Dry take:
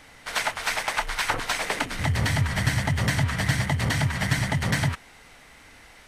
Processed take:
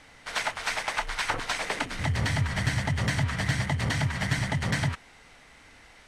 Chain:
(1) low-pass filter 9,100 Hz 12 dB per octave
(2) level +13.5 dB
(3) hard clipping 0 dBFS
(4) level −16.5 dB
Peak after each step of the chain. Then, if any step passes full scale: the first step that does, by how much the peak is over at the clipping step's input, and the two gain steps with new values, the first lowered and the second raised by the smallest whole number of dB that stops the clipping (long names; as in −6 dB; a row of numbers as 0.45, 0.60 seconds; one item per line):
−10.0, +3.5, 0.0, −16.5 dBFS
step 2, 3.5 dB
step 2 +9.5 dB, step 4 −12.5 dB